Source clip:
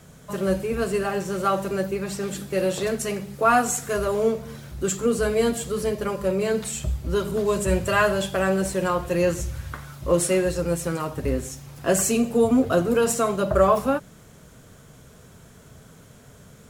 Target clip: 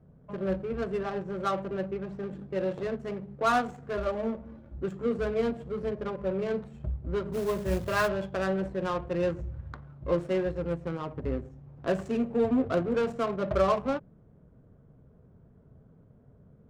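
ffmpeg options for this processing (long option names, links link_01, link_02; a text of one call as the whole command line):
ffmpeg -i in.wav -filter_complex "[0:a]asettb=1/sr,asplit=3[link_01][link_02][link_03];[link_01]atrim=end=3.974[link_04];[link_02]atrim=start=3.97:end=4.78,asetpts=PTS-STARTPTS,afade=type=in:duration=0.004:curve=qsin,afade=type=out:start_time=0.806:duration=0.004:curve=qsin,aecho=1:1:3.5:0.71,atrim=end_sample=35721[link_05];[link_03]atrim=start=4.776[link_06];[link_04][link_05]acrossfade=duration=0.004:curve1=hsin:curve2=qsin[link_07];[link_07][link_06]acrossfade=duration=0.004:curve1=qsin:curve2=hsin,adynamicsmooth=sensitivity=1.5:basefreq=580,asplit=3[link_08][link_09][link_10];[link_08]afade=type=out:start_time=7.32:duration=0.02[link_11];[link_09]acrusher=bits=4:mode=log:mix=0:aa=0.000001,afade=type=in:start_time=7.32:duration=0.02,afade=type=out:start_time=8.07:duration=0.02[link_12];[link_10]afade=type=in:start_time=8.07:duration=0.02[link_13];[link_11][link_12][link_13]amix=inputs=3:normalize=0,volume=-6.5dB" out.wav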